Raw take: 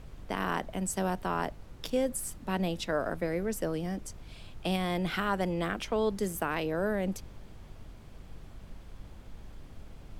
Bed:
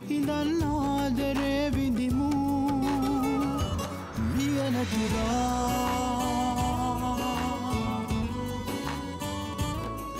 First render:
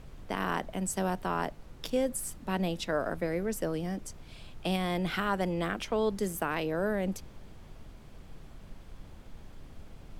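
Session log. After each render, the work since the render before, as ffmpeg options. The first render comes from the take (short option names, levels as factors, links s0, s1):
-af "bandreject=f=50:t=h:w=4,bandreject=f=100:t=h:w=4"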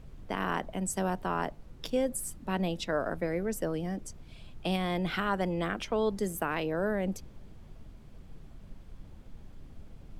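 -af "afftdn=nr=6:nf=-50"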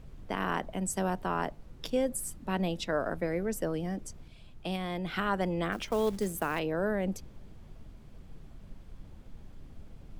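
-filter_complex "[0:a]asettb=1/sr,asplit=3[s0][s1][s2];[s0]atrim=end=5.724[s3];[s1]atrim=start=5.72:end=6.59,asetpts=PTS-STARTPTS,afade=t=in:d=0.004:c=qsin,afade=t=out:st=0.866:d=0.004:c=qsin,acrusher=bits=5:mode=log:mix=0:aa=0.000001[s4];[s2]atrim=start=6.586[s5];[s3][s4]acrossfade=d=0.004:c1=hsin:c2=qsin[s6];[s6][s5]acrossfade=d=0.004:c1=qsin:c2=hsin,asplit=3[s7][s8][s9];[s7]atrim=end=4.282[s10];[s8]atrim=start=4.278:end=5.162,asetpts=PTS-STARTPTS,volume=0.631[s11];[s9]atrim=start=5.158[s12];[s10][s11]acrossfade=d=0.004:c1=hsin:c2=hsin[s13];[s13][s12]acrossfade=d=0.004:c1=hsin:c2=hsin"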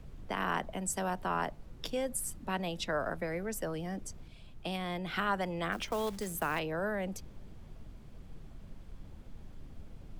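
-filter_complex "[0:a]acrossover=split=230|560|4500[s0][s1][s2][s3];[s0]alimiter=level_in=4.47:limit=0.0631:level=0:latency=1,volume=0.224[s4];[s1]acompressor=threshold=0.00631:ratio=6[s5];[s4][s5][s2][s3]amix=inputs=4:normalize=0"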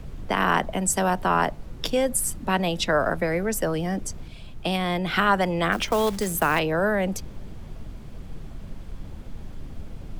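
-af "volume=3.76"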